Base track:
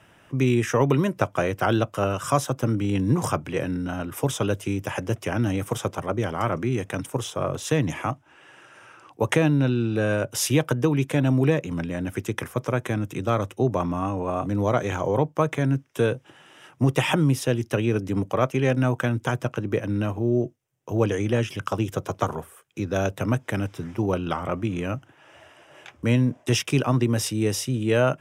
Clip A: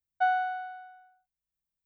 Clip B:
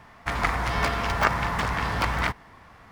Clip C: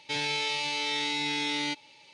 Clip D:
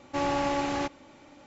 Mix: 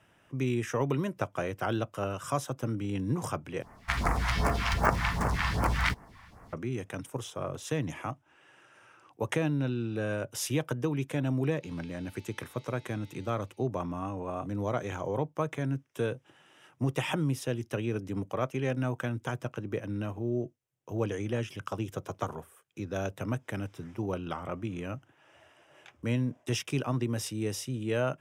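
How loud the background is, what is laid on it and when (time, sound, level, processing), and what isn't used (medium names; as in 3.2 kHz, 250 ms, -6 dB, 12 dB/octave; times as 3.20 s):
base track -9 dB
3.62 s: replace with B -0.5 dB + phase shifter stages 2, 2.6 Hz, lowest notch 350–3500 Hz
11.54 s: add C -17 dB + compression 5:1, threshold -40 dBFS
not used: A, D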